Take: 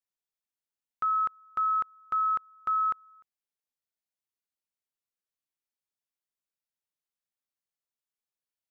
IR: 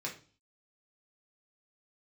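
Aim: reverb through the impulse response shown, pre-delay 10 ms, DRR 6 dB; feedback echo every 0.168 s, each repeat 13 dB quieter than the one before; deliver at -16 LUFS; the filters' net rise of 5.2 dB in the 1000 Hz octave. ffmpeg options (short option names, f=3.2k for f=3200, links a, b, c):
-filter_complex "[0:a]equalizer=f=1k:t=o:g=8,aecho=1:1:168|336|504:0.224|0.0493|0.0108,asplit=2[a][b];[1:a]atrim=start_sample=2205,adelay=10[c];[b][c]afir=irnorm=-1:irlink=0,volume=-8dB[d];[a][d]amix=inputs=2:normalize=0,volume=5dB"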